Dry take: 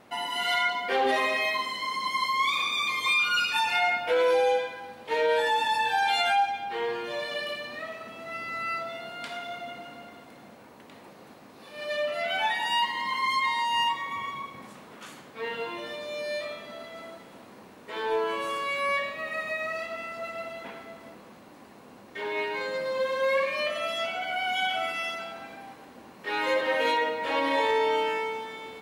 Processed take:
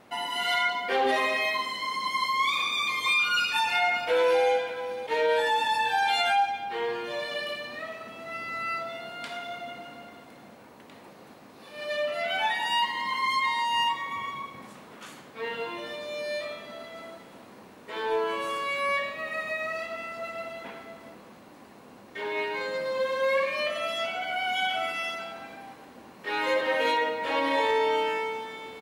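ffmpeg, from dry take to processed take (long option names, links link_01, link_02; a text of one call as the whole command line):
ffmpeg -i in.wav -filter_complex "[0:a]asplit=2[link_01][link_02];[link_02]afade=type=in:start_time=3.34:duration=0.01,afade=type=out:start_time=4.47:duration=0.01,aecho=0:1:590|1180:0.223872|0.0223872[link_03];[link_01][link_03]amix=inputs=2:normalize=0" out.wav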